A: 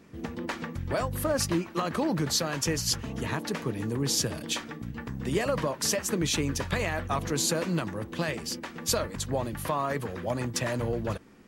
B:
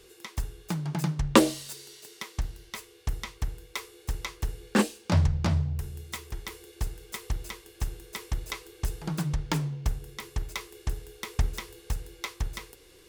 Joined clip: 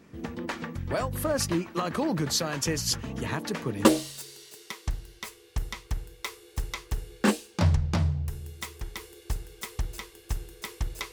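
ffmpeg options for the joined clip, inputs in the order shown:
-filter_complex "[0:a]apad=whole_dur=11.12,atrim=end=11.12,atrim=end=3.852[a];[1:a]atrim=start=1.358:end=8.63[b];[a][b]acrossfade=d=0.004:c1=hsin:c2=hsin"

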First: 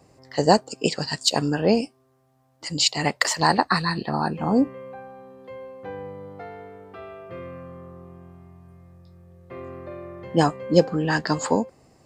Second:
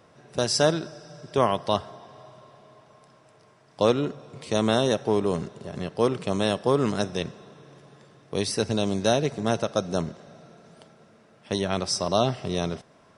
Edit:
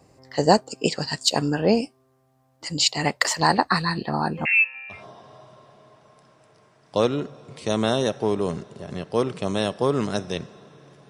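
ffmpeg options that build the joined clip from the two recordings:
-filter_complex "[0:a]asettb=1/sr,asplit=3[a][b][c];[a]atrim=end=4.454[d];[b]atrim=start=4.45:end=5.05,asetpts=PTS-STARTPTS,afade=t=in:d=0.004:c=qsin,afade=t=out:st=0.596:d=0.004:c=qsin,lowpass=f=2.5k:t=q:w=0.5098,lowpass=f=2.5k:t=q:w=0.6013,lowpass=f=2.5k:t=q:w=0.9,lowpass=f=2.5k:t=q:w=2.563,afreqshift=-2900[e];[c]atrim=start=5.046[f];[d][e]acrossfade=d=0.004:c1=hsin:c2=qsin[g];[g][f]acrossfade=d=0.004:c1=qsin:c2=hsin,apad=whole_dur=11.09,atrim=end=11.09,atrim=end=5.05,asetpts=PTS-STARTPTS[h];[1:a]atrim=start=1.74:end=7.94,asetpts=PTS-STARTPTS[i];[h][i]acrossfade=d=0.16:c1=tri:c2=tri"

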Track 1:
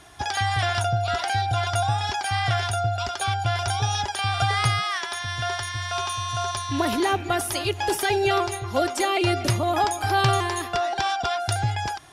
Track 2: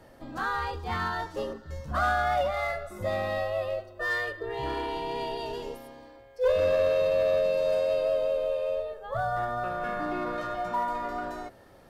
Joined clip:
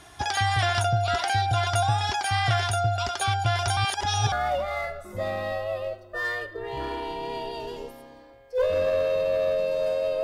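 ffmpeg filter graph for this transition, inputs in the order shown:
-filter_complex "[0:a]apad=whole_dur=10.23,atrim=end=10.23,asplit=2[a][b];[a]atrim=end=3.772[c];[b]atrim=start=3.768:end=4.322,asetpts=PTS-STARTPTS,areverse[d];[1:a]atrim=start=2.178:end=8.09[e];[c][d]acrossfade=d=0.004:c1=hsin:c2=hsin[f];[f][e]acrossfade=d=0.004:c1=hsin:c2=hsin"

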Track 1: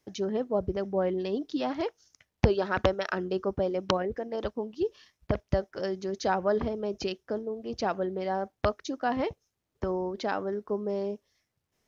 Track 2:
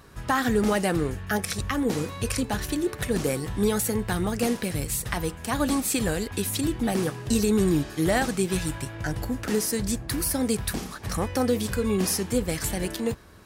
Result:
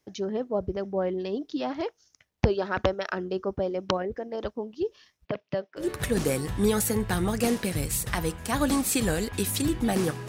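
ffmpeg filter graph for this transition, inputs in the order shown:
-filter_complex "[0:a]asettb=1/sr,asplit=3[a][b][c];[a]atrim=end=5.254[d];[b]atrim=start=5.25:end=5.9,asetpts=PTS-STARTPTS,afade=t=in:d=0.004:c=qsin,afade=t=out:st=0.646:d=0.004:c=qsin,highpass=f=150:w=0.5412,highpass=f=150:w=1.3066,equalizer=f=220:t=q:w=4:g=-5,equalizer=f=350:t=q:w=4:g=-5,equalizer=f=790:t=q:w=4:g=-5,equalizer=f=1.4k:t=q:w=4:g=-3,equalizer=f=2.7k:t=q:w=4:g=6,lowpass=f=4.7k:w=0.5412,lowpass=f=4.7k:w=1.3066[e];[c]atrim=start=5.896[f];[d][e]acrossfade=d=0.004:c1=hsin:c2=qsin[g];[g][f]acrossfade=d=0.004:c1=qsin:c2=hsin,apad=whole_dur=10.28,atrim=end=10.28,atrim=end=5.9,asetpts=PTS-STARTPTS[h];[1:a]atrim=start=2.75:end=7.27,asetpts=PTS-STARTPTS[i];[h][i]acrossfade=d=0.14:c1=tri:c2=tri"

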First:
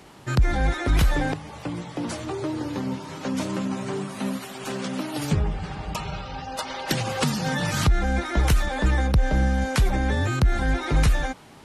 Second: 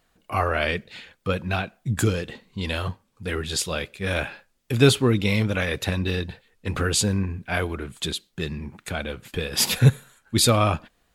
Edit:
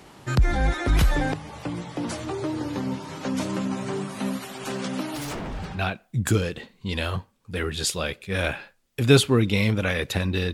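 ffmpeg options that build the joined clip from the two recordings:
-filter_complex "[0:a]asettb=1/sr,asplit=3[a][b][c];[a]atrim=end=5.154[d];[b]atrim=start=5.15:end=5.85,asetpts=PTS-STARTPTS,afade=t=in:d=0.004:c=qsin,afade=t=out:st=0.696:d=0.004:c=qsin,aeval=exprs='0.0447*(abs(mod(val(0)/0.0447+3,4)-2)-1)':c=same[e];[c]atrim=start=5.846[f];[d][e]acrossfade=d=0.004:c1=hsin:c2=qsin[g];[g][f]acrossfade=d=0.004:c1=qsin:c2=hsin,apad=whole_dur=10.53,atrim=end=10.53,atrim=end=5.85,asetpts=PTS-STARTPTS[h];[1:a]atrim=start=1.37:end=6.25,asetpts=PTS-STARTPTS[i];[h][i]acrossfade=d=0.2:c1=tri:c2=tri"

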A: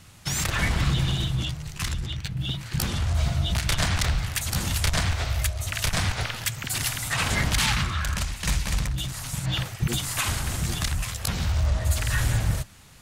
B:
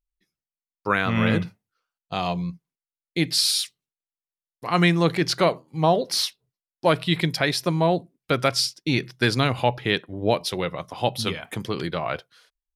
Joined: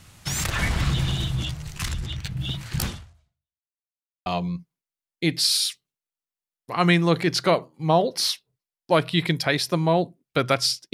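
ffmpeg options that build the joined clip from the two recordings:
-filter_complex "[0:a]apad=whole_dur=10.93,atrim=end=10.93,asplit=2[a][b];[a]atrim=end=3.7,asetpts=PTS-STARTPTS,afade=t=out:st=2.87:d=0.83:c=exp[c];[b]atrim=start=3.7:end=4.26,asetpts=PTS-STARTPTS,volume=0[d];[1:a]atrim=start=2.2:end=8.87,asetpts=PTS-STARTPTS,afade=t=in:d=0.004:c=hsin[e];[c][d][e]concat=n=3:v=0:a=1"

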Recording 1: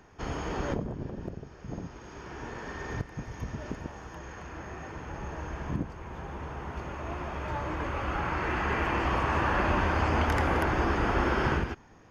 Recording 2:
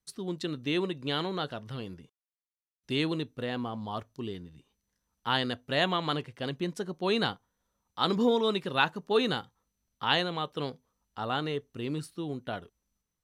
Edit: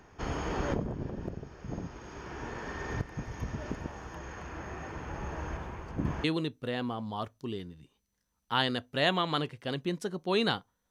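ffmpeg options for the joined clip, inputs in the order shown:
-filter_complex "[0:a]apad=whole_dur=10.9,atrim=end=10.9,asplit=2[a][b];[a]atrim=end=5.572[c];[b]atrim=start=5.568:end=6.242,asetpts=PTS-STARTPTS,areverse[d];[1:a]atrim=start=2.988:end=7.65[e];[c][d]acrossfade=d=0.004:c1=hsin:c2=hsin[f];[f][e]acrossfade=d=0.004:c1=hsin:c2=hsin"

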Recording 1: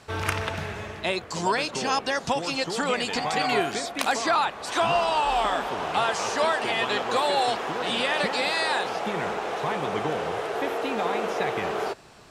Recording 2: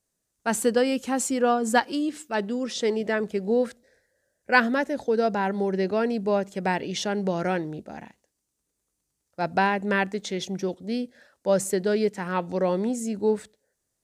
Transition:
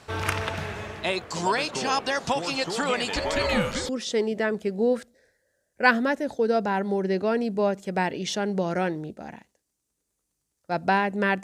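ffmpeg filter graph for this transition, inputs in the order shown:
-filter_complex "[0:a]asettb=1/sr,asplit=3[a][b][c];[a]atrim=end=3.164[d];[b]atrim=start=3.16:end=3.89,asetpts=PTS-STARTPTS,afade=t=in:d=0.004:c=qsin,afade=t=out:st=0.726:d=0.004:c=qsin,afreqshift=-190[e];[c]atrim=start=3.886[f];[d][e]acrossfade=d=0.004:c1=hsin:c2=qsin[g];[g][f]acrossfade=d=0.004:c1=qsin:c2=hsin,apad=whole_dur=11.43,atrim=end=11.43,atrim=end=3.892[h];[1:a]atrim=start=2.578:end=10.12[i];[h][i]acrossfade=d=0.004:c1=hsin:c2=hsin"

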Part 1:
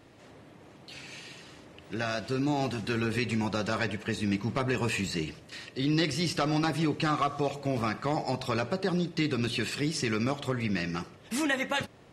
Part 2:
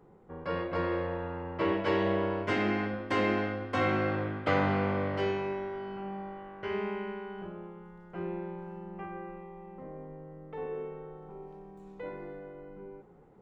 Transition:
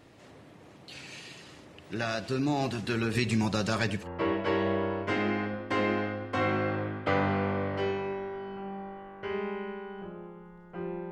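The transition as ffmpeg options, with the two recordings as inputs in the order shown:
-filter_complex "[0:a]asettb=1/sr,asplit=3[a][b][c];[a]atrim=end=3.154[d];[b]atrim=start=3.15:end=4.08,asetpts=PTS-STARTPTS,afade=t=in:d=0.004:c=qsin,afade=t=out:st=0.926:d=0.004:c=qsin,bass=f=250:g=4,treble=f=4k:g=5[e];[c]atrim=start=4.076[f];[d][e]acrossfade=d=0.004:c1=hsin:c2=qsin[g];[g][f]acrossfade=d=0.004:c1=qsin:c2=hsin,apad=whole_dur=11.11,atrim=end=11.11,atrim=end=4.08,asetpts=PTS-STARTPTS[h];[1:a]atrim=start=1.4:end=8.51,asetpts=PTS-STARTPTS[i];[h][i]acrossfade=d=0.08:c1=tri:c2=tri"

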